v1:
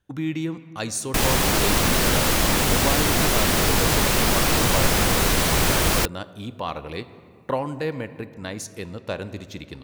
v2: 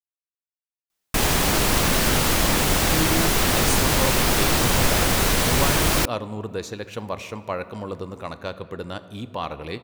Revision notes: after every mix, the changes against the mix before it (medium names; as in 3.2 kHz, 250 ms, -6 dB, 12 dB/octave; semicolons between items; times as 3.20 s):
speech: entry +2.75 s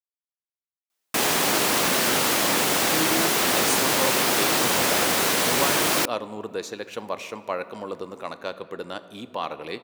master: add high-pass 260 Hz 12 dB/octave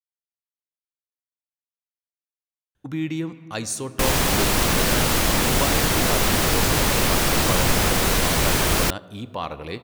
background: entry +2.85 s; master: remove high-pass 260 Hz 12 dB/octave